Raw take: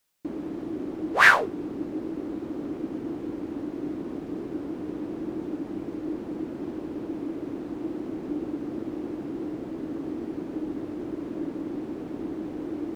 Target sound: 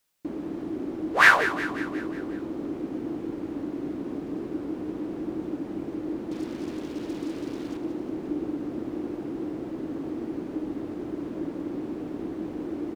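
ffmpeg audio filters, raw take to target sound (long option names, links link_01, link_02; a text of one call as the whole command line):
ffmpeg -i in.wav -filter_complex "[0:a]asettb=1/sr,asplit=3[link_01][link_02][link_03];[link_01]atrim=end=6.314[link_04];[link_02]atrim=start=6.31:end=7.77,asetpts=PTS-STARTPTS,afade=type=in:duration=0.004:curve=qsin,afade=type=out:start_time=1.456:duration=0.004:curve=qsin,acrusher=bits=6:mix=0:aa=0.5[link_05];[link_03]atrim=start=7.766[link_06];[link_04][link_05]acrossfade=duration=0.004:curve1=hsin:curve2=qsin[link_07];[link_07][link_06]acrossfade=duration=0.004:curve1=qsin:curve2=hsin,aecho=1:1:181|362|543|724|905|1086:0.251|0.146|0.0845|0.049|0.0284|0.0165" out.wav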